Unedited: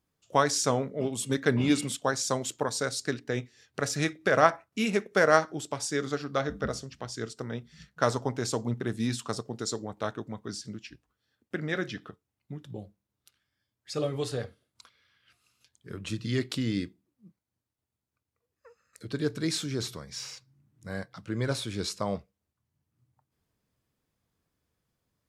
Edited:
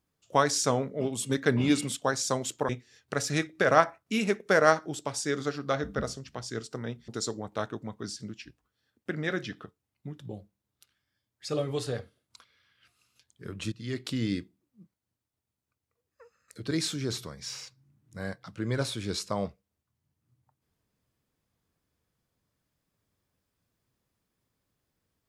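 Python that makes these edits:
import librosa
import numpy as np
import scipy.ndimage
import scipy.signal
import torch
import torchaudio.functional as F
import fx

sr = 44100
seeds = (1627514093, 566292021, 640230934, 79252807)

y = fx.edit(x, sr, fx.cut(start_s=2.69, length_s=0.66),
    fx.cut(start_s=7.74, length_s=1.79),
    fx.fade_in_from(start_s=16.17, length_s=0.51, floor_db=-13.0),
    fx.cut(start_s=19.16, length_s=0.25), tone=tone)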